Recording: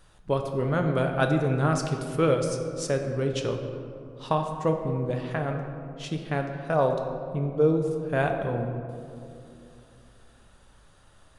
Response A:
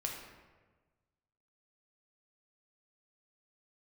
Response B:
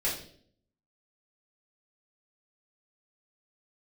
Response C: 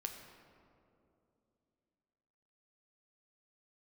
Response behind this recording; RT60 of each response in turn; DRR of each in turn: C; 1.3, 0.55, 2.8 seconds; −0.5, −8.5, 3.5 decibels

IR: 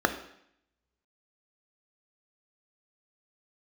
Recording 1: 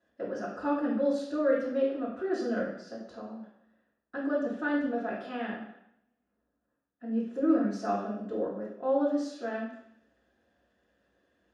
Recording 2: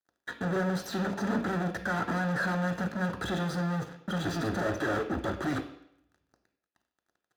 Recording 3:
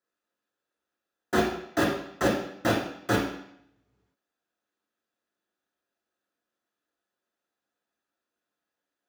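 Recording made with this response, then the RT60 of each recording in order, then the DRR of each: 2; 0.70, 0.70, 0.70 seconds; −7.5, 6.5, −2.5 decibels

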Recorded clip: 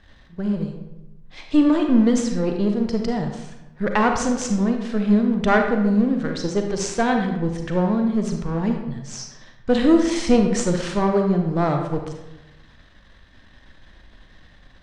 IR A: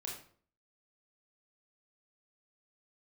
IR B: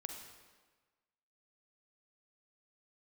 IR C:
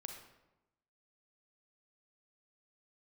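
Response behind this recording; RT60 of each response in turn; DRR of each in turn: C; 0.50, 1.4, 1.0 seconds; −3.0, 3.5, 3.5 decibels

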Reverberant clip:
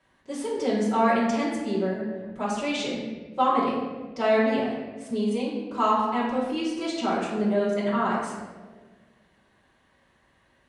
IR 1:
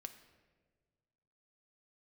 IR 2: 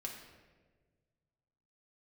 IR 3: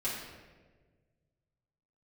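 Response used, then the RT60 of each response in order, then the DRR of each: 3; 1.5, 1.5, 1.4 seconds; 7.5, −0.5, −9.5 decibels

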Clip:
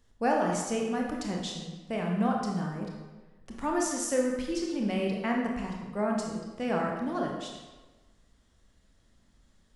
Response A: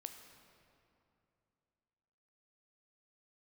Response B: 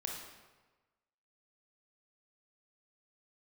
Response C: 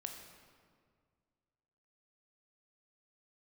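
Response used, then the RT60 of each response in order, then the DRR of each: B; 2.8, 1.3, 1.9 seconds; 6.0, −0.5, 3.0 decibels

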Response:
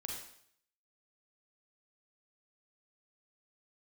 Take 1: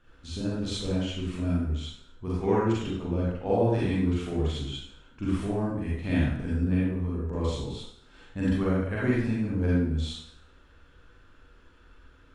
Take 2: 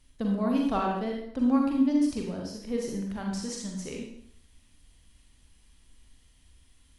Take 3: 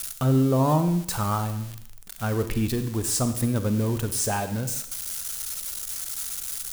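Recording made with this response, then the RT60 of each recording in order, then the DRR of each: 2; 0.65, 0.65, 0.65 seconds; −7.5, −0.5, 9.5 decibels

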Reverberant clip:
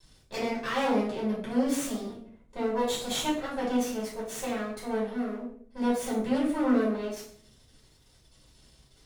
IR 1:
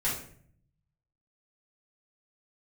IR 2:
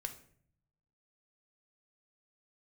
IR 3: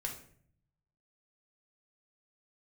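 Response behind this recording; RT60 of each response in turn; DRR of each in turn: 1; 0.55, 0.55, 0.55 seconds; −9.0, 6.0, 0.5 decibels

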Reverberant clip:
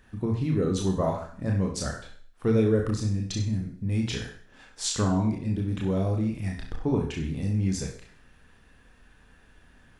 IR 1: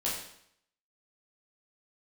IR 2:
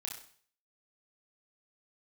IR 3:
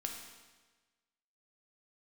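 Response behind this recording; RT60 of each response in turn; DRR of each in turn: 2; 0.70, 0.50, 1.3 seconds; −7.0, −1.0, 1.5 decibels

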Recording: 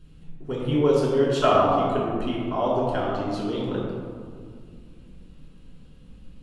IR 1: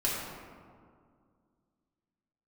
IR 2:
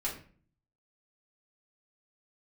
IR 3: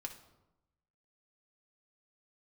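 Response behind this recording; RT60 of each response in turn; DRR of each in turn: 1; 2.1, 0.45, 0.95 seconds; −7.0, −6.0, 2.0 decibels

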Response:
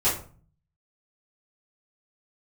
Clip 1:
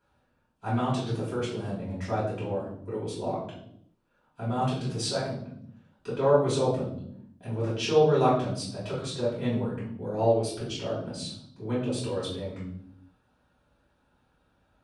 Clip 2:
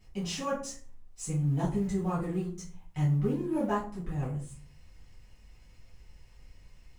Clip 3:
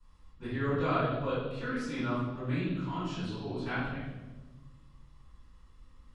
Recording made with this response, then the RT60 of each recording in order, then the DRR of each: 2; 0.75, 0.40, 1.2 seconds; −9.0, −11.0, −17.5 decibels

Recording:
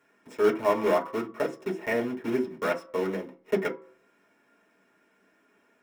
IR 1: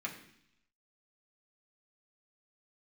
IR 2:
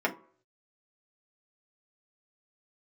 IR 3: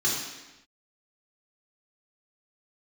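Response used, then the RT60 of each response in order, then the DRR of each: 2; 0.70 s, 0.50 s, non-exponential decay; −3.0, −1.5, −6.0 decibels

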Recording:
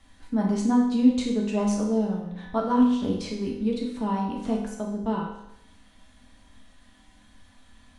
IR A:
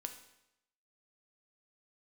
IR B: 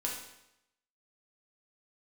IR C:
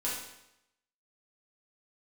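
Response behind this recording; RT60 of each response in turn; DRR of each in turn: B; 0.85, 0.85, 0.85 seconds; 5.5, −3.0, −7.5 decibels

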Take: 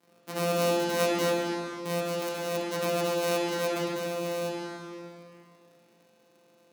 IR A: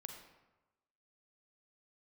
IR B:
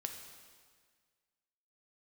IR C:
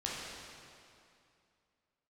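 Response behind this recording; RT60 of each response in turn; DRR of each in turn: C; 1.1, 1.7, 2.5 seconds; 3.5, 4.0, −5.5 decibels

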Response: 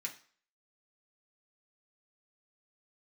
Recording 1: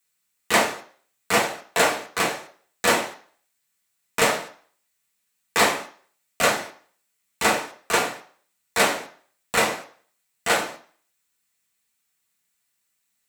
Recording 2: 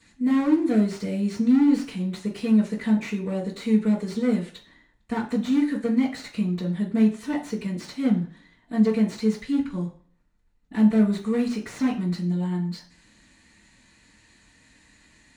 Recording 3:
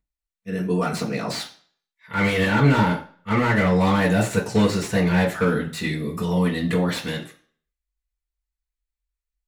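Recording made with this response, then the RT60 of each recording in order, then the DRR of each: 1; 0.45, 0.45, 0.45 seconds; −2.0, −12.0, −6.5 decibels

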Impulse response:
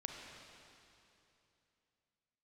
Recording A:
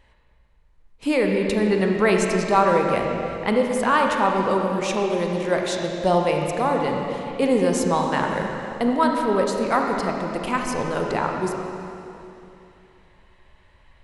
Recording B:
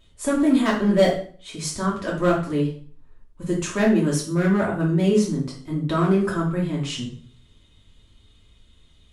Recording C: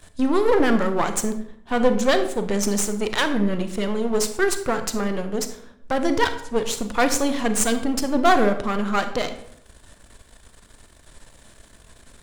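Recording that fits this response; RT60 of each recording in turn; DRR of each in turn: A; 2.9, 0.45, 0.70 seconds; 1.0, −5.0, 8.0 decibels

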